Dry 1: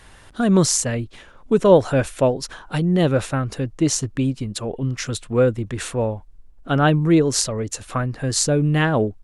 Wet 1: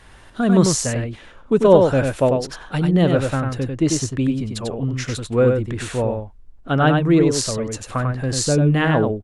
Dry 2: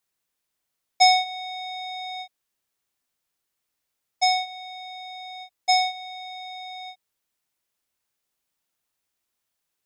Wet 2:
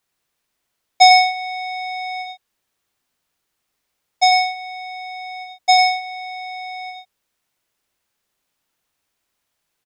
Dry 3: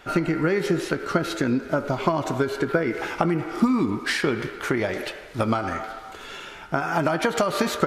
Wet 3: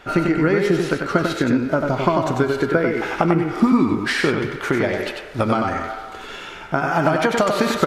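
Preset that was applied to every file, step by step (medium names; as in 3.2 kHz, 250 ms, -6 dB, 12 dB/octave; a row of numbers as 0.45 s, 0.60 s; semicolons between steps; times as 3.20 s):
treble shelf 5.5 kHz -6 dB; on a send: delay 95 ms -4.5 dB; on the sum: peak normalisation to -1.5 dBFS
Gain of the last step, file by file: +0.5 dB, +7.5 dB, +3.5 dB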